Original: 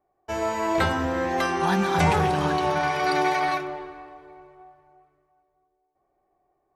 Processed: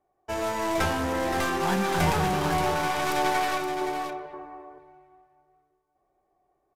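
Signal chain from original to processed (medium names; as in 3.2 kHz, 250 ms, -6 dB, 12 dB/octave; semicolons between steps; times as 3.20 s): tracing distortion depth 0.21 ms; band-stop 4.3 kHz, Q 22; in parallel at -9.5 dB: integer overflow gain 21.5 dB; 3.81–4.26 s: on the sum: ten-band graphic EQ 250 Hz +7 dB, 500 Hz +8 dB, 1 kHz +8 dB, 4 kHz -10 dB; on a send: delay 522 ms -8 dB; on the sum: resampled via 32 kHz; trim -3.5 dB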